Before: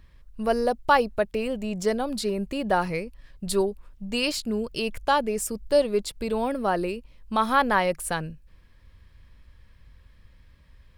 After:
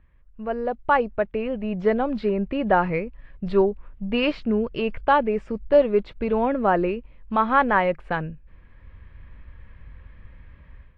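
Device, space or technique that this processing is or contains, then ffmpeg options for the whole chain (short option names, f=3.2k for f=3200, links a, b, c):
action camera in a waterproof case: -af "lowpass=f=2.5k:w=0.5412,lowpass=f=2.5k:w=1.3066,dynaudnorm=f=490:g=3:m=13.5dB,volume=-5dB" -ar 32000 -c:a aac -b:a 48k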